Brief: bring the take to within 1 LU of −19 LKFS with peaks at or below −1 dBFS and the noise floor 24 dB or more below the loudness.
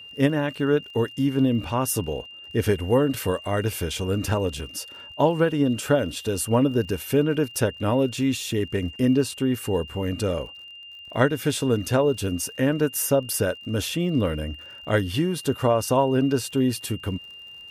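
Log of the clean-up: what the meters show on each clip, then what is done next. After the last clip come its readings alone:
crackle rate 52 per second; interfering tone 2,800 Hz; level of the tone −40 dBFS; integrated loudness −24.0 LKFS; sample peak −6.5 dBFS; target loudness −19.0 LKFS
→ click removal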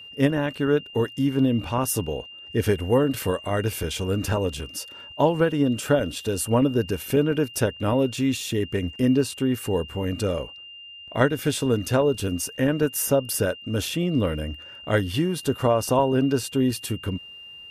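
crackle rate 0.51 per second; interfering tone 2,800 Hz; level of the tone −40 dBFS
→ notch filter 2,800 Hz, Q 30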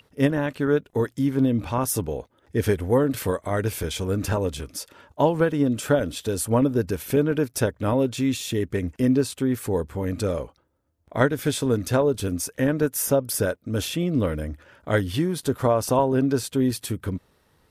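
interfering tone none found; integrated loudness −24.0 LKFS; sample peak −6.5 dBFS; target loudness −19.0 LKFS
→ level +5 dB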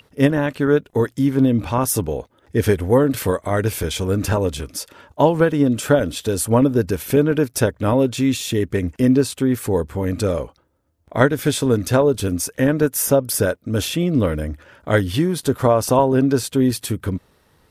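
integrated loudness −19.0 LKFS; sample peak −1.5 dBFS; background noise floor −59 dBFS

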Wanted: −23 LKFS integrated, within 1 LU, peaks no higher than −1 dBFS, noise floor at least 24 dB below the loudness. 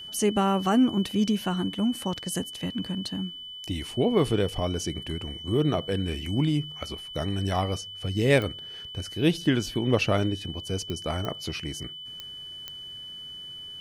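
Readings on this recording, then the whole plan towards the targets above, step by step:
number of clicks 5; interfering tone 3,000 Hz; level of the tone −38 dBFS; integrated loudness −28.0 LKFS; sample peak −7.5 dBFS; target loudness −23.0 LKFS
→ click removal
notch filter 3,000 Hz, Q 30
level +5 dB

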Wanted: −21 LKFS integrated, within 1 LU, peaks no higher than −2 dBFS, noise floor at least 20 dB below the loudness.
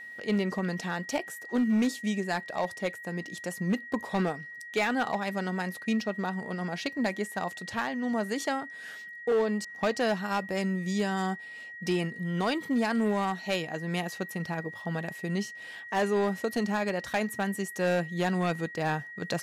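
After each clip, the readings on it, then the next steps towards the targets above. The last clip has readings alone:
share of clipped samples 0.9%; peaks flattened at −21.0 dBFS; interfering tone 1,900 Hz; level of the tone −41 dBFS; integrated loudness −30.5 LKFS; sample peak −21.0 dBFS; target loudness −21.0 LKFS
→ clipped peaks rebuilt −21 dBFS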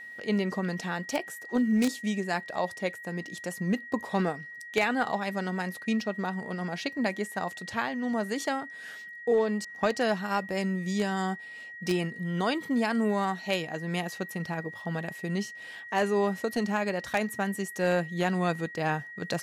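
share of clipped samples 0.0%; interfering tone 1,900 Hz; level of the tone −41 dBFS
→ notch filter 1,900 Hz, Q 30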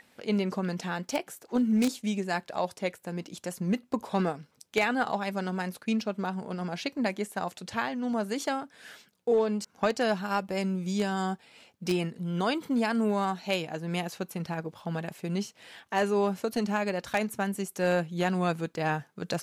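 interfering tone none found; integrated loudness −30.5 LKFS; sample peak −12.0 dBFS; target loudness −21.0 LKFS
→ level +9.5 dB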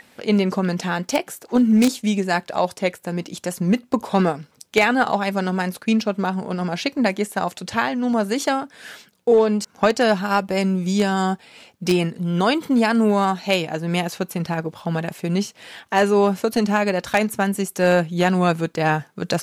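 integrated loudness −21.0 LKFS; sample peak −2.5 dBFS; background noise floor −56 dBFS

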